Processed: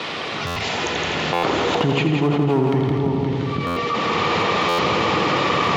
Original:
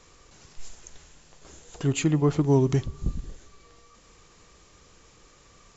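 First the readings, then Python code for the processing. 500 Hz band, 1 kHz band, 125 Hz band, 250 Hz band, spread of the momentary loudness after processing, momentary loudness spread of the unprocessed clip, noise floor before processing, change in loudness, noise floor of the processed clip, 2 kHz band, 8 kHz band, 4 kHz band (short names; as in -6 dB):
+10.0 dB, +21.5 dB, +4.5 dB, +7.5 dB, 5 LU, 13 LU, -56 dBFS, +4.5 dB, -27 dBFS, +21.5 dB, n/a, +21.0 dB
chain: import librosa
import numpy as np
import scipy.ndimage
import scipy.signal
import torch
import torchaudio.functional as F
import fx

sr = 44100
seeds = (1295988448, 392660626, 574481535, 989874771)

p1 = fx.recorder_agc(x, sr, target_db=-16.0, rise_db_per_s=24.0, max_gain_db=30)
p2 = fx.noise_reduce_blind(p1, sr, reduce_db=7)
p3 = fx.dynamic_eq(p2, sr, hz=840.0, q=2.5, threshold_db=-45.0, ratio=4.0, max_db=5)
p4 = fx.quant_dither(p3, sr, seeds[0], bits=6, dither='triangular')
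p5 = p3 + F.gain(torch.from_numpy(p4), -12.0).numpy()
p6 = scipy.signal.sosfilt(scipy.signal.butter(4, 3600.0, 'lowpass', fs=sr, output='sos'), p5)
p7 = p6 + 10.0 ** (-12.0 / 20.0) * np.pad(p6, (int(520 * sr / 1000.0), 0))[:len(p6)]
p8 = fx.clip_asym(p7, sr, top_db=-16.0, bottom_db=-11.0)
p9 = scipy.signal.sosfilt(scipy.signal.bessel(8, 160.0, 'highpass', norm='mag', fs=sr, output='sos'), p8)
p10 = fx.notch(p9, sr, hz=1600.0, q=11.0)
p11 = fx.echo_heads(p10, sr, ms=83, heads='first and second', feedback_pct=49, wet_db=-7.5)
p12 = fx.buffer_glitch(p11, sr, at_s=(0.46, 1.33, 3.66, 4.68), block=512, repeats=8)
y = fx.env_flatten(p12, sr, amount_pct=70)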